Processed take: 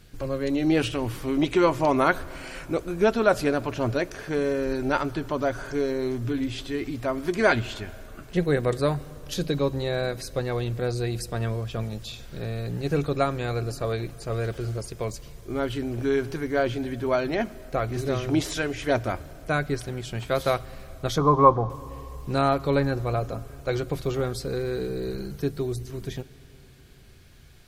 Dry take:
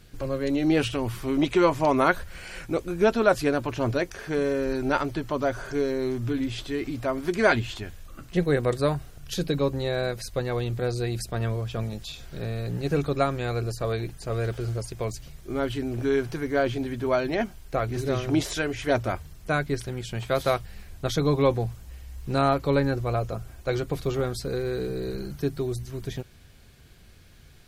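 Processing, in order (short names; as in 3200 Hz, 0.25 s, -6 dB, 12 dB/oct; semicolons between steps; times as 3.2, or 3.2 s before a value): 21.18–21.7 synth low-pass 1100 Hz, resonance Q 6.2; reverb RT60 3.5 s, pre-delay 16 ms, DRR 18.5 dB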